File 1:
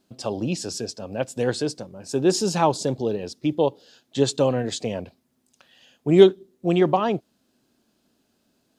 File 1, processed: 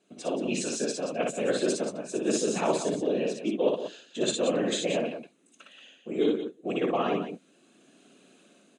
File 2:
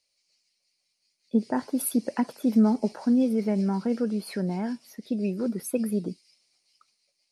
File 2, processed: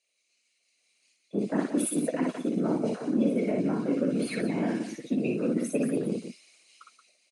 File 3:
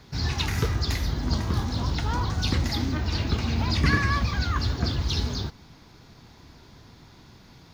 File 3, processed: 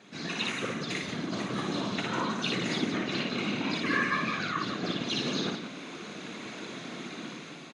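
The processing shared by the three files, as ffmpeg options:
-filter_complex "[0:a]asplit=2[a][b];[b]adelay=16,volume=-12dB[c];[a][c]amix=inputs=2:normalize=0,aresample=22050,aresample=44100,dynaudnorm=f=350:g=5:m=13dB,afftfilt=real='hypot(re,im)*cos(2*PI*random(0))':imag='hypot(re,im)*sin(2*PI*random(1))':win_size=512:overlap=0.75,superequalizer=9b=0.501:12b=1.58:14b=0.355,areverse,acompressor=threshold=-31dB:ratio=4,areverse,highpass=f=200:w=0.5412,highpass=f=200:w=1.3066,aecho=1:1:58.31|177.8:0.708|0.355,adynamicequalizer=threshold=0.00251:dfrequency=5800:dqfactor=0.7:tfrequency=5800:tqfactor=0.7:attack=5:release=100:ratio=0.375:range=2:mode=cutabove:tftype=highshelf,volume=5dB"

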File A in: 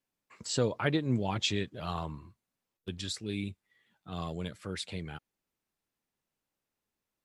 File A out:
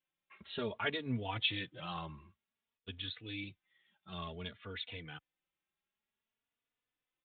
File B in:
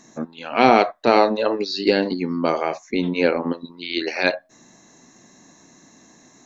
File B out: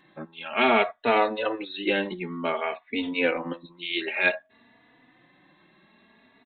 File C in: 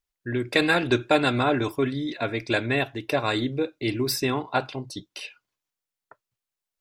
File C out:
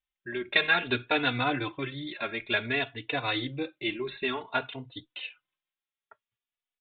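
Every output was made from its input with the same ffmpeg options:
-filter_complex "[0:a]tiltshelf=f=1.4k:g=-6,aresample=8000,aresample=44100,asplit=2[a][b];[b]adelay=3.4,afreqshift=0.55[c];[a][c]amix=inputs=2:normalize=1"

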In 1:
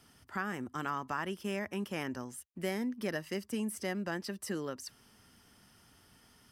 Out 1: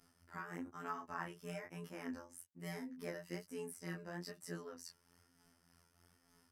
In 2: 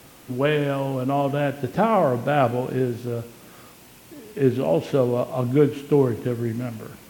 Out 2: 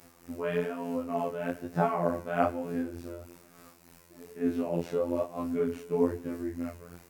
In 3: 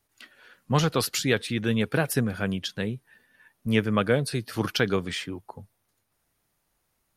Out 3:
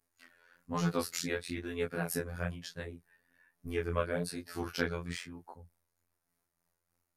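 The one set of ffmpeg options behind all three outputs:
-af "equalizer=f=3.2k:w=2.5:g=-8,tremolo=f=3.3:d=0.44,afftfilt=real='hypot(re,im)*cos(PI*b)':imag='0':win_size=2048:overlap=0.75,flanger=delay=18.5:depth=6.8:speed=1.1"

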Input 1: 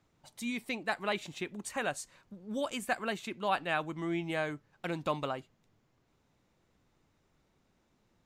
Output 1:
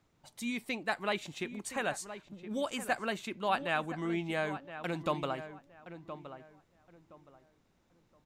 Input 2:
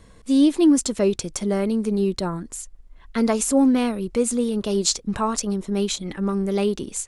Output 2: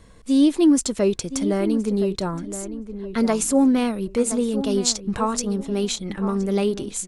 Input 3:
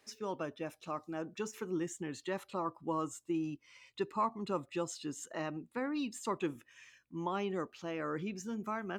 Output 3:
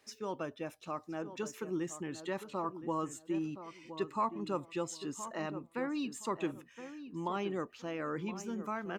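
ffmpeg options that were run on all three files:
-filter_complex "[0:a]asplit=2[a][b];[b]adelay=1019,lowpass=f=1.8k:p=1,volume=-11dB,asplit=2[c][d];[d]adelay=1019,lowpass=f=1.8k:p=1,volume=0.26,asplit=2[e][f];[f]adelay=1019,lowpass=f=1.8k:p=1,volume=0.26[g];[a][c][e][g]amix=inputs=4:normalize=0"

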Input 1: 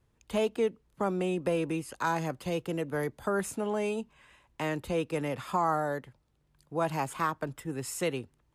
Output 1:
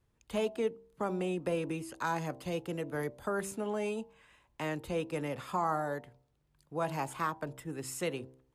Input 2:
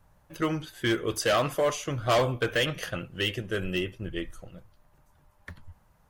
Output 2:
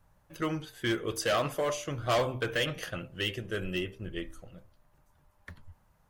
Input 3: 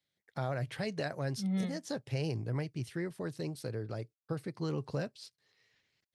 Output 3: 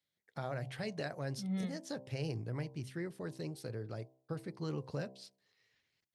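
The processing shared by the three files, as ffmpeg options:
-af "bandreject=f=65.23:t=h:w=4,bandreject=f=130.46:t=h:w=4,bandreject=f=195.69:t=h:w=4,bandreject=f=260.92:t=h:w=4,bandreject=f=326.15:t=h:w=4,bandreject=f=391.38:t=h:w=4,bandreject=f=456.61:t=h:w=4,bandreject=f=521.84:t=h:w=4,bandreject=f=587.07:t=h:w=4,bandreject=f=652.3:t=h:w=4,bandreject=f=717.53:t=h:w=4,bandreject=f=782.76:t=h:w=4,bandreject=f=847.99:t=h:w=4,bandreject=f=913.22:t=h:w=4,bandreject=f=978.45:t=h:w=4,bandreject=f=1.04368k:t=h:w=4,volume=-3.5dB"

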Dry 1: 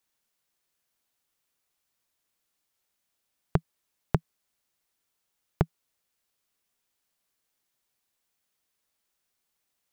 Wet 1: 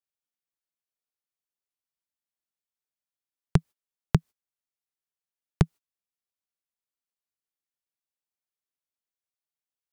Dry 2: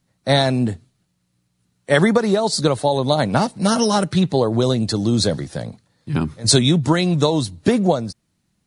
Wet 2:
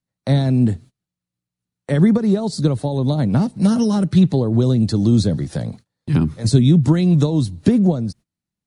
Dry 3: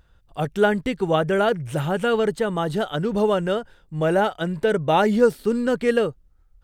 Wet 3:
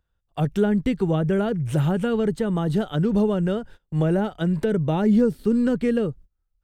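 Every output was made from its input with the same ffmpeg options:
-filter_complex "[0:a]agate=range=-23dB:threshold=-42dB:ratio=16:detection=peak,acrossover=split=310[a][b];[b]acompressor=threshold=-36dB:ratio=4[c];[a][c]amix=inputs=2:normalize=0,volume=5.5dB"

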